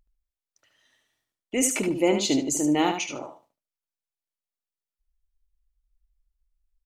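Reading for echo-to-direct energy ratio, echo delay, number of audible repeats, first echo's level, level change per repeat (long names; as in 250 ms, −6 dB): −7.0 dB, 74 ms, 2, −7.0 dB, −15.0 dB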